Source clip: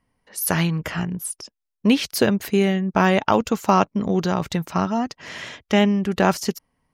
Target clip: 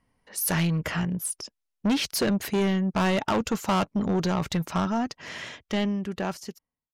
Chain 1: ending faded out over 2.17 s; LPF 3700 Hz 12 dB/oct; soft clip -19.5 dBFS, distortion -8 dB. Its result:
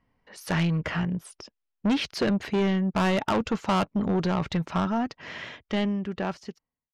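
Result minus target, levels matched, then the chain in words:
8000 Hz band -12.0 dB
ending faded out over 2.17 s; LPF 14000 Hz 12 dB/oct; soft clip -19.5 dBFS, distortion -8 dB

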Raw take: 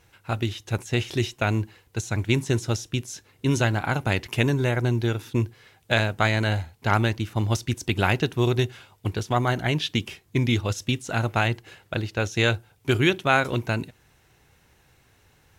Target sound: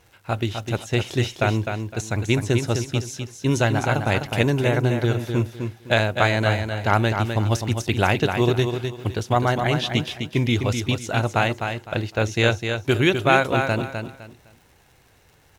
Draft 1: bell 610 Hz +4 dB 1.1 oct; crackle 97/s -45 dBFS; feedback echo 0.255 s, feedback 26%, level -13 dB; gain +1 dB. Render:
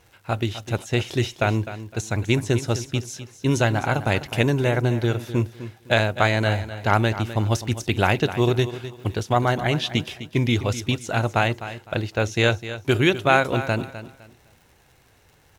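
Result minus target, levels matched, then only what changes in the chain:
echo-to-direct -6.5 dB
change: feedback echo 0.255 s, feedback 26%, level -6.5 dB

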